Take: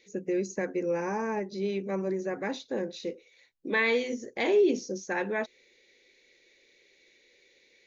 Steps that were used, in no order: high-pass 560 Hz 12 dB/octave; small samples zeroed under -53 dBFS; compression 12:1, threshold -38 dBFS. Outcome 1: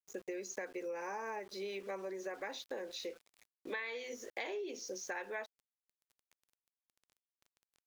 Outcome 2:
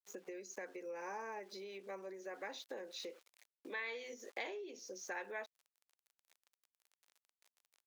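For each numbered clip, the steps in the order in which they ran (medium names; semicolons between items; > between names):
high-pass > small samples zeroed > compression; small samples zeroed > compression > high-pass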